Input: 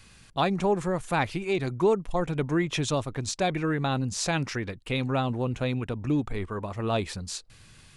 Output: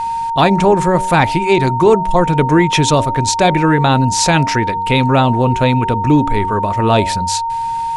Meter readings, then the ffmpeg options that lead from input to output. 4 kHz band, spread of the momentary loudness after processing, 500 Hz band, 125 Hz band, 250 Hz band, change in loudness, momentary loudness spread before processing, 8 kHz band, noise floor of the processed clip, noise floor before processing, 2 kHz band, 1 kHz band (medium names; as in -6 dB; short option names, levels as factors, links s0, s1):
+14.0 dB, 5 LU, +13.5 dB, +14.5 dB, +14.0 dB, +15.0 dB, 8 LU, +14.5 dB, -19 dBFS, -54 dBFS, +14.0 dB, +19.5 dB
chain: -af "aeval=exprs='val(0)+0.0282*sin(2*PI*920*n/s)':c=same,apsyclip=7.94,bandreject=f=94.55:t=h:w=4,bandreject=f=189.1:t=h:w=4,bandreject=f=283.65:t=h:w=4,bandreject=f=378.2:t=h:w=4,bandreject=f=472.75:t=h:w=4,bandreject=f=567.3:t=h:w=4,bandreject=f=661.85:t=h:w=4,bandreject=f=756.4:t=h:w=4,bandreject=f=850.95:t=h:w=4,bandreject=f=945.5:t=h:w=4,volume=0.668"